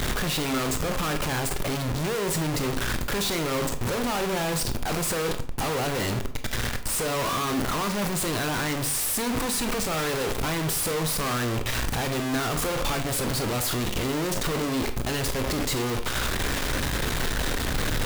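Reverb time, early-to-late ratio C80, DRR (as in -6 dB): 0.45 s, 15.5 dB, 7.5 dB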